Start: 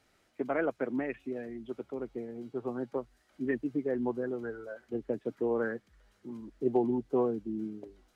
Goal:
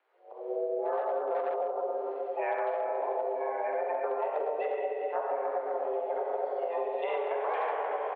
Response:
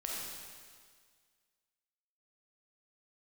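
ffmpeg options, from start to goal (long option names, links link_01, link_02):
-filter_complex "[0:a]areverse,highshelf=frequency=2200:gain=-8.5,aecho=1:1:152|304|456|608:0.0794|0.0413|0.0215|0.0112[link_01];[1:a]atrim=start_sample=2205[link_02];[link_01][link_02]afir=irnorm=-1:irlink=0,asoftclip=type=hard:threshold=-24dB,highpass=frequency=170:width_type=q:width=0.5412,highpass=frequency=170:width_type=q:width=1.307,lowpass=frequency=3000:width_type=q:width=0.5176,lowpass=frequency=3000:width_type=q:width=0.7071,lowpass=frequency=3000:width_type=q:width=1.932,afreqshift=160,dynaudnorm=framelen=290:gausssize=5:maxgain=11.5dB,asplit=2[link_03][link_04];[link_04]asetrate=58866,aresample=44100,atempo=0.749154,volume=-3dB[link_05];[link_03][link_05]amix=inputs=2:normalize=0,acompressor=threshold=-27dB:ratio=10,equalizer=frequency=900:width=0.45:gain=3.5,volume=-4dB"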